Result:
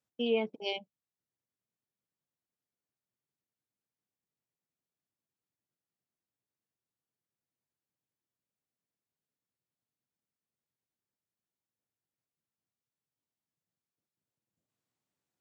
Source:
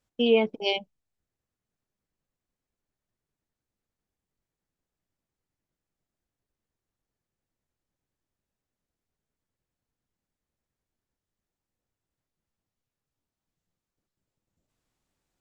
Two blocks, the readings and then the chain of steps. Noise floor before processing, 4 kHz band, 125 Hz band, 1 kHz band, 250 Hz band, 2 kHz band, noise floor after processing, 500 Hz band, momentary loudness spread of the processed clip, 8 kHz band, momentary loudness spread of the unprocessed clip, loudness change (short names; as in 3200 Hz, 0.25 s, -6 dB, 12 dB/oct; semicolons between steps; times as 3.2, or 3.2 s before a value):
under -85 dBFS, -8.5 dB, -8.5 dB, -8.5 dB, -8.5 dB, -8.5 dB, under -85 dBFS, -8.5 dB, 7 LU, n/a, 7 LU, -8.5 dB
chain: HPF 100 Hz 24 dB/oct; gain -8.5 dB